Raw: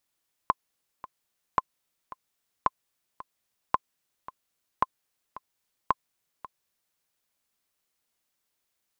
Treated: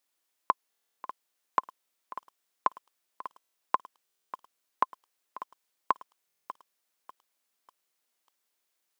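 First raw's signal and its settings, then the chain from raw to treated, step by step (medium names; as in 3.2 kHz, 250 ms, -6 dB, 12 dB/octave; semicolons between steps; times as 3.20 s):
metronome 111 bpm, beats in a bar 2, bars 6, 1.04 kHz, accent 18 dB -8 dBFS
high-pass 280 Hz 12 dB/octave; buffer glitch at 0.70/3.26/4.04/6.27 s, samples 1024, times 11; bit-crushed delay 594 ms, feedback 35%, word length 8-bit, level -14 dB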